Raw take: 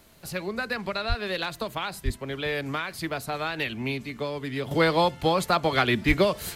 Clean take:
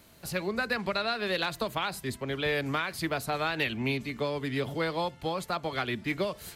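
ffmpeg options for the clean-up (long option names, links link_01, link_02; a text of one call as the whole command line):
ffmpeg -i in.wav -filter_complex "[0:a]asplit=3[link_01][link_02][link_03];[link_01]afade=type=out:start_time=1.08:duration=0.02[link_04];[link_02]highpass=frequency=140:width=0.5412,highpass=frequency=140:width=1.3066,afade=type=in:start_time=1.08:duration=0.02,afade=type=out:start_time=1.2:duration=0.02[link_05];[link_03]afade=type=in:start_time=1.2:duration=0.02[link_06];[link_04][link_05][link_06]amix=inputs=3:normalize=0,asplit=3[link_07][link_08][link_09];[link_07]afade=type=out:start_time=2.04:duration=0.02[link_10];[link_08]highpass=frequency=140:width=0.5412,highpass=frequency=140:width=1.3066,afade=type=in:start_time=2.04:duration=0.02,afade=type=out:start_time=2.16:duration=0.02[link_11];[link_09]afade=type=in:start_time=2.16:duration=0.02[link_12];[link_10][link_11][link_12]amix=inputs=3:normalize=0,asplit=3[link_13][link_14][link_15];[link_13]afade=type=out:start_time=6.07:duration=0.02[link_16];[link_14]highpass=frequency=140:width=0.5412,highpass=frequency=140:width=1.3066,afade=type=in:start_time=6.07:duration=0.02,afade=type=out:start_time=6.19:duration=0.02[link_17];[link_15]afade=type=in:start_time=6.19:duration=0.02[link_18];[link_16][link_17][link_18]amix=inputs=3:normalize=0,agate=range=-21dB:threshold=-34dB,asetnsamples=nb_out_samples=441:pad=0,asendcmd='4.71 volume volume -9dB',volume=0dB" out.wav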